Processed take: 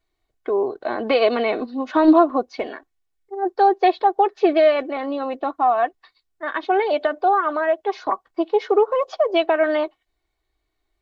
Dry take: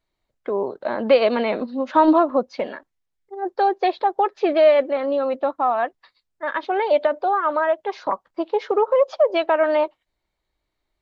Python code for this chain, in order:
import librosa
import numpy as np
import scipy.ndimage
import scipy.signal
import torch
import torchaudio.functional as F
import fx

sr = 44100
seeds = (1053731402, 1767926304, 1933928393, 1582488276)

y = x + 0.6 * np.pad(x, (int(2.7 * sr / 1000.0), 0))[:len(x)]